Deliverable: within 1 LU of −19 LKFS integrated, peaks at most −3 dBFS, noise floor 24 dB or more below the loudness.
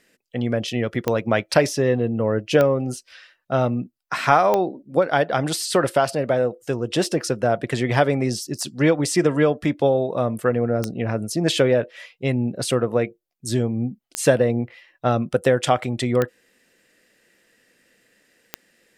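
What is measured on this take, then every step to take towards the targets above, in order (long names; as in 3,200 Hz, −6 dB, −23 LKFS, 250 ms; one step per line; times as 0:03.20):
number of clicks 7; integrated loudness −21.5 LKFS; sample peak −2.0 dBFS; target loudness −19.0 LKFS
→ click removal
level +2.5 dB
brickwall limiter −3 dBFS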